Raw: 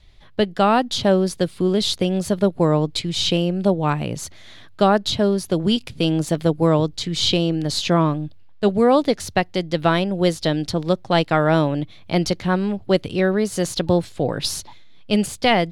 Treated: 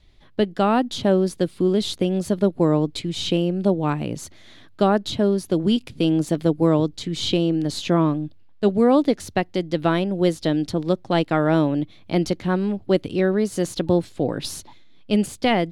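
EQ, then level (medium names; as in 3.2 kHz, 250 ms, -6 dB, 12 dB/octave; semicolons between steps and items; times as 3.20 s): dynamic bell 4.9 kHz, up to -4 dB, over -36 dBFS, Q 2; peaking EQ 290 Hz +7 dB 1.1 oct; -4.5 dB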